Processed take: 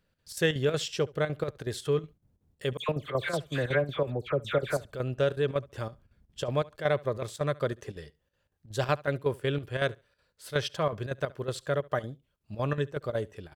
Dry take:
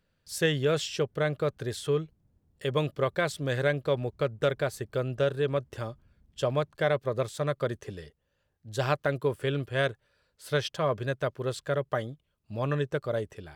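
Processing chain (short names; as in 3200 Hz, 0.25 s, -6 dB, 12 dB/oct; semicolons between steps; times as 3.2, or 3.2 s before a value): 2.77–4.85 dispersion lows, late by 0.118 s, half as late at 2100 Hz; chopper 5.4 Hz, depth 65%, duty 75%; feedback echo 70 ms, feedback 16%, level -23 dB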